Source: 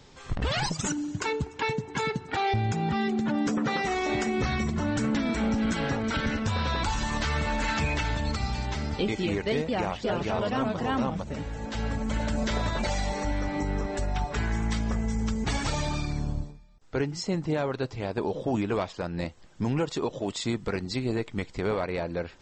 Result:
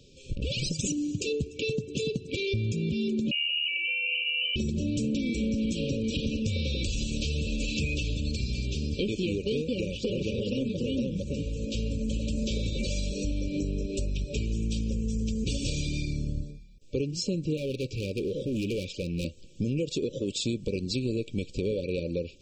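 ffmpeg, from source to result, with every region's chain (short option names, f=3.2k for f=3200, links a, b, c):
-filter_complex "[0:a]asettb=1/sr,asplit=3[a][b][c];[a]atrim=end=3.314[d];[b]atrim=start=3.31:end=4.56,asetpts=PTS-STARTPTS,afade=t=in:d=0.004:c=qsin,afade=t=out:st=1.246:d=0.004:c=qsin,lowpass=f=2.6k:t=q:w=0.5098,lowpass=f=2.6k:t=q:w=0.6013,lowpass=f=2.6k:t=q:w=0.9,lowpass=f=2.6k:t=q:w=2.563,afreqshift=-3100,highpass=700,aemphasis=mode=reproduction:type=50fm[e];[c]atrim=start=4.556[f];[d][e]acrossfade=d=0.004:c1=hsin:c2=qsin[g];[g][f]acrossfade=d=0.004:c1=qsin:c2=hsin,asettb=1/sr,asplit=3[h][i][j];[h]atrim=end=17.574[k];[i]atrim=start=17.57:end=19.25,asetpts=PTS-STARTPTS,afade=t=in:d=0.004:c=qsin,afade=t=out:st=1.676:d=0.004:c=qsin,asuperstop=centerf=770:order=4:qfactor=1.7,equalizer=f=2k:t=o:w=0.49:g=12.5,asoftclip=type=hard:threshold=-30dB[l];[j]atrim=start=19.246[m];[k][l]acrossfade=d=0.004:c1=hsin:c2=qsin[n];[n][m]acrossfade=d=0.004:c1=qsin:c2=hsin,dynaudnorm=f=390:g=3:m=6dB,afftfilt=real='re*(1-between(b*sr/4096,590,2300))':imag='im*(1-between(b*sr/4096,590,2300))':win_size=4096:overlap=0.75,acompressor=threshold=-25dB:ratio=3,volume=-2dB"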